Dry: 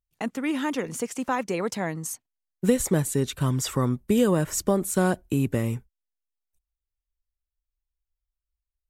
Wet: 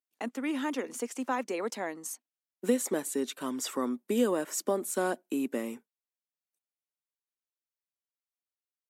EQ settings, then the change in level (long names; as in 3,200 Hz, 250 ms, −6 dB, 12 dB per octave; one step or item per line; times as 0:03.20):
Chebyshev high-pass filter 240 Hz, order 4
−4.5 dB